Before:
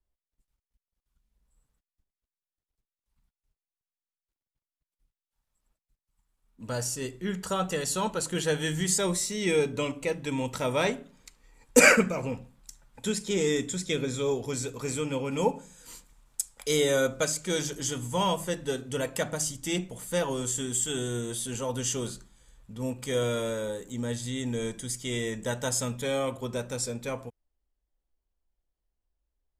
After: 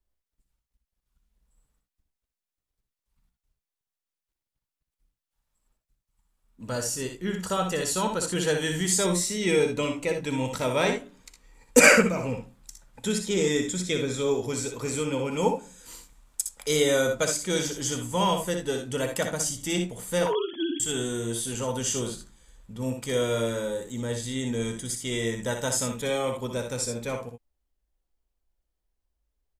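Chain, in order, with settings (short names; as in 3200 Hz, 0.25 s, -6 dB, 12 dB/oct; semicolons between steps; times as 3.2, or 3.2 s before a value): 20.26–20.8 sine-wave speech; early reflections 61 ms -7 dB, 78 ms -12.5 dB; gain +1.5 dB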